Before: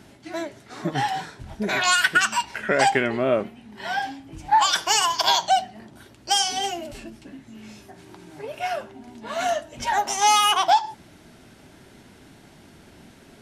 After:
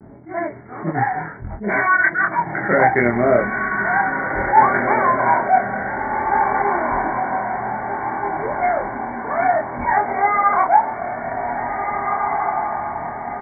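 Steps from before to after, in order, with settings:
low-pass that shuts in the quiet parts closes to 770 Hz, open at −22.5 dBFS
in parallel at −3 dB: downward compressor, threshold −28 dBFS, peak gain reduction 14 dB
on the sum: pitch vibrato 0.65 Hz 46 cents
linear-phase brick-wall low-pass 2,300 Hz
double-tracking delay 25 ms −2.5 dB
feedback delay with all-pass diffusion 1,822 ms, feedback 52%, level −5 dB
level that may rise only so fast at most 180 dB per second
level +2 dB

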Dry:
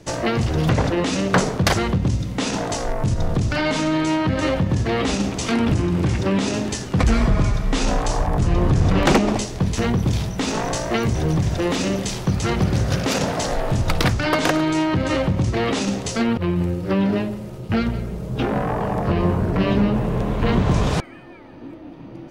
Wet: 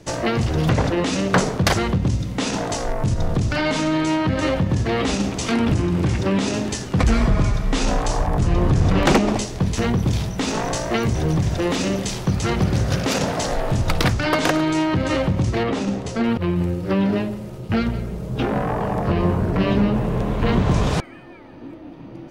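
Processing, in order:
0:15.63–0:16.24: high-shelf EQ 2,400 Hz −10.5 dB

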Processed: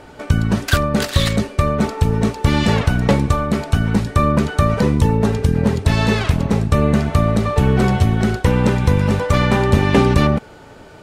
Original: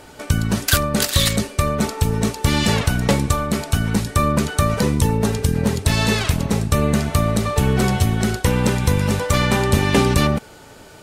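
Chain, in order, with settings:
low-pass filter 2,100 Hz 6 dB per octave
level +3 dB

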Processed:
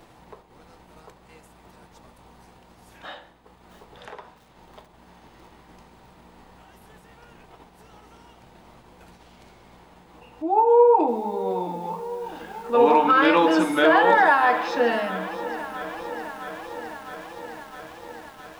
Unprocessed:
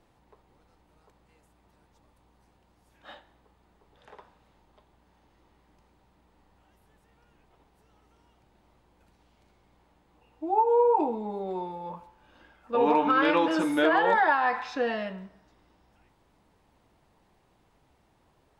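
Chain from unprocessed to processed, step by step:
downward expander −55 dBFS
low-shelf EQ 220 Hz −6.5 dB
upward compression, threshold −39 dBFS
on a send at −12.5 dB: convolution reverb RT60 0.45 s, pre-delay 3 ms
on the sum: feedback echo at a low word length 660 ms, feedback 80%, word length 8 bits, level −15 dB
level +6 dB

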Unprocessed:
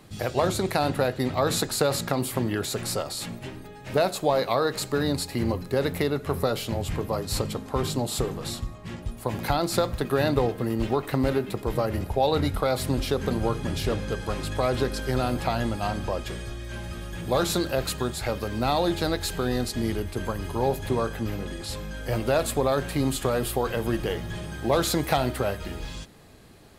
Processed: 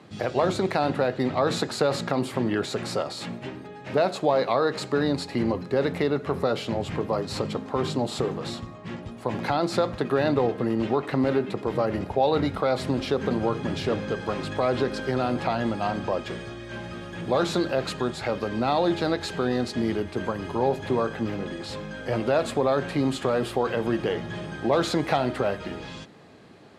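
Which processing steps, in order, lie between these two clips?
in parallel at +1 dB: brickwall limiter −18 dBFS, peak gain reduction 9 dB
on the sum: band-pass filter 150–7,200 Hz
high-shelf EQ 4,300 Hz −10 dB
level −3 dB

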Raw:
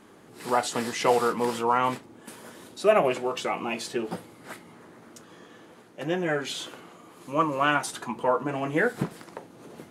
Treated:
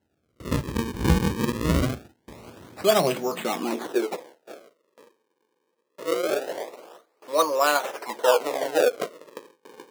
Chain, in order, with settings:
sample-and-hold swept by an LFO 37×, swing 160% 0.23 Hz
noise gate with hold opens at −39 dBFS
high-pass filter sweep 66 Hz → 500 Hz, 0:02.37–0:04.27

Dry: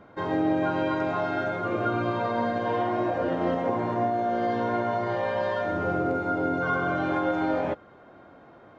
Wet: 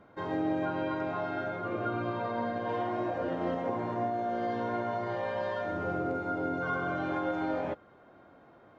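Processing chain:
0:00.65–0:02.69: high-frequency loss of the air 73 metres
level −6 dB

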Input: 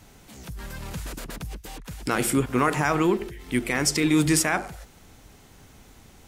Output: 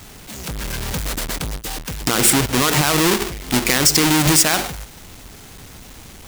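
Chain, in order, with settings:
each half-wave held at its own peak
high-shelf EQ 2,100 Hz +10 dB
boost into a limiter +5 dB
level −1 dB

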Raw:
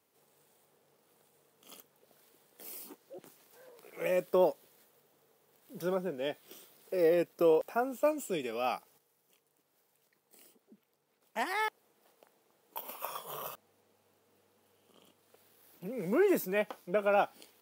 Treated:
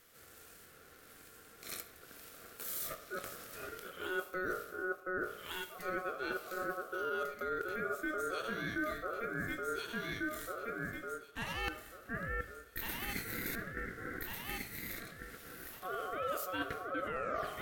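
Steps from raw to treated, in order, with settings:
turntable brake at the end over 0.66 s
high-pass filter 130 Hz
low-shelf EQ 320 Hz −6 dB
mains-hum notches 50/100/150/200/250/300/350/400/450/500 Hz
delay that swaps between a low-pass and a high-pass 724 ms, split 850 Hz, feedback 55%, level −6 dB
brickwall limiter −26.5 dBFS, peak gain reduction 9 dB
reversed playback
downward compressor 12 to 1, threshold −48 dBFS, peak gain reduction 18 dB
reversed playback
harmonic and percussive parts rebalanced percussive −4 dB
on a send at −11.5 dB: convolution reverb RT60 0.95 s, pre-delay 25 ms
on the sum: ring modulation 920 Hz
level +16.5 dB

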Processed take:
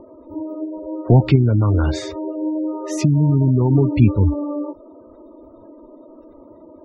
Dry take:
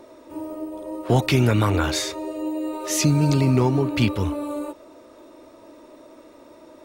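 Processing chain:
gate on every frequency bin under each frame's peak −20 dB strong
spectral tilt −3 dB per octave
0:01.35–0:03.71: downward compressor, threshold −12 dBFS, peak gain reduction 5.5 dB

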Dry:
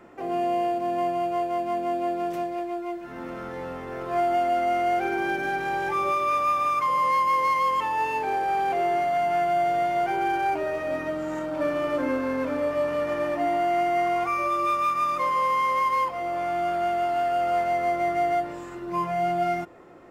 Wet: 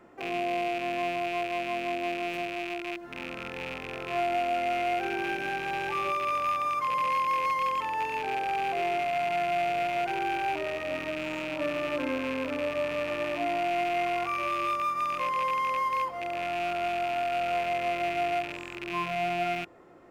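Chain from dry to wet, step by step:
loose part that buzzes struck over −42 dBFS, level −20 dBFS
level −5 dB

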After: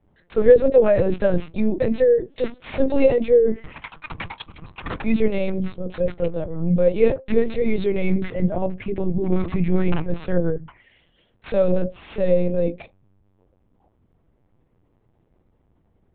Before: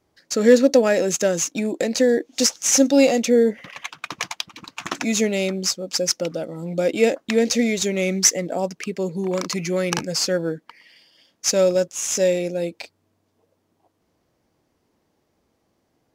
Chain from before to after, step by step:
low-pass filter 1,800 Hz 6 dB per octave
on a send at −9 dB: convolution reverb, pre-delay 3 ms
on the sum: linear-prediction vocoder at 8 kHz pitch kept

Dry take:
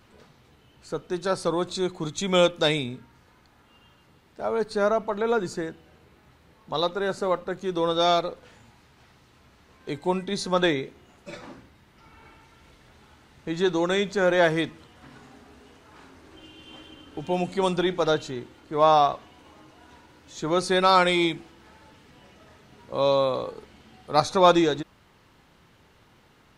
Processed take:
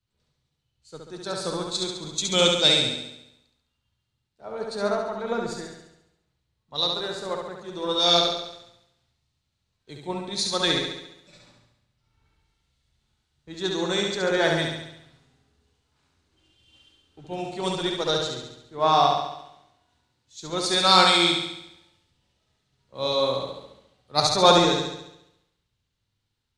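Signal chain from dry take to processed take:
octave-band graphic EQ 125/4,000/8,000 Hz +4/+9/+8 dB
flutter between parallel walls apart 11.9 metres, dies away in 1.3 s
multiband upward and downward expander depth 70%
level −7 dB

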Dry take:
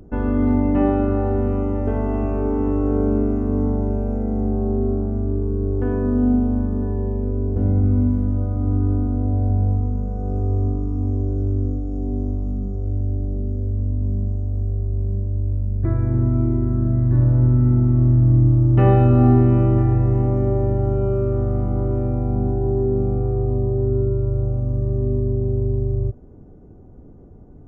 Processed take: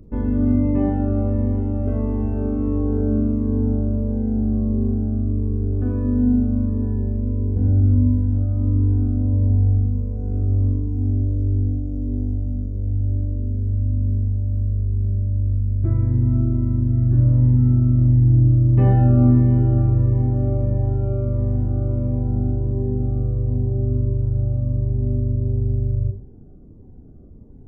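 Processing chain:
low-shelf EQ 460 Hz +7.5 dB
four-comb reverb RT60 0.4 s, combs from 28 ms, DRR 5.5 dB
phaser whose notches keep moving one way falling 1.5 Hz
level −7.5 dB

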